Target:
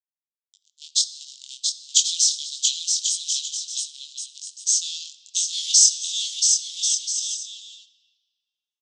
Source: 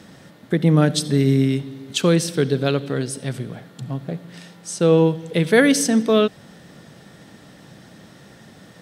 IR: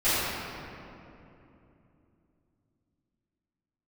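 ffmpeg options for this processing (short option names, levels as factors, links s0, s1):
-filter_complex "[0:a]aderivative,dynaudnorm=f=430:g=5:m=3.35,aeval=exprs='val(0)+0.00398*sin(2*PI*5200*n/s)':c=same,acrusher=bits=3:mix=0:aa=0.5,flanger=delay=19.5:depth=5:speed=1.6,asuperpass=centerf=4800:order=12:qfactor=1.1,aecho=1:1:680|1088|1333|1480|1568:0.631|0.398|0.251|0.158|0.1,asplit=2[s0][s1];[1:a]atrim=start_sample=2205[s2];[s1][s2]afir=irnorm=-1:irlink=0,volume=0.0447[s3];[s0][s3]amix=inputs=2:normalize=0,crystalizer=i=4.5:c=0,volume=0.631"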